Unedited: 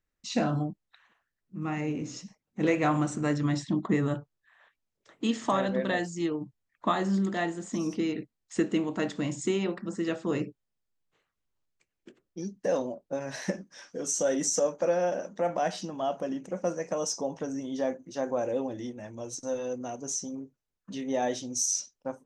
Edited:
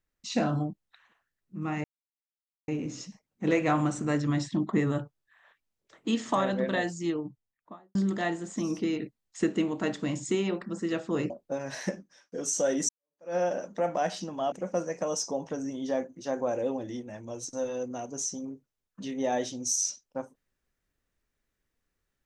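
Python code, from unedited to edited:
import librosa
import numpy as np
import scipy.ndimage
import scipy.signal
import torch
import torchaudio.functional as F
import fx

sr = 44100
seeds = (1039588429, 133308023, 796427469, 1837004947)

y = fx.studio_fade_out(x, sr, start_s=6.17, length_s=0.94)
y = fx.edit(y, sr, fx.insert_silence(at_s=1.84, length_s=0.84),
    fx.cut(start_s=10.46, length_s=2.45),
    fx.fade_out_span(start_s=13.45, length_s=0.48),
    fx.fade_in_span(start_s=14.5, length_s=0.46, curve='exp'),
    fx.cut(start_s=16.13, length_s=0.29), tone=tone)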